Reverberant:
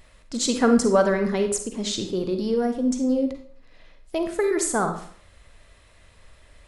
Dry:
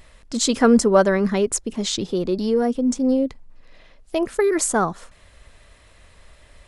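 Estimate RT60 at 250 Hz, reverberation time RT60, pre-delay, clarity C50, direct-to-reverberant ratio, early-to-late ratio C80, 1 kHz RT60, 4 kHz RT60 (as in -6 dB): 0.55 s, 0.55 s, 38 ms, 8.0 dB, 6.0 dB, 11.5 dB, 0.50 s, 0.40 s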